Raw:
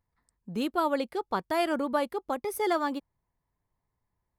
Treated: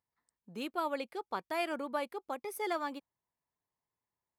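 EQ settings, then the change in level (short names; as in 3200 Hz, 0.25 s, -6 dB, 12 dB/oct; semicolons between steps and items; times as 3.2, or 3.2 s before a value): HPF 340 Hz 6 dB/oct; dynamic EQ 2400 Hz, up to +7 dB, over -55 dBFS, Q 5; -6.5 dB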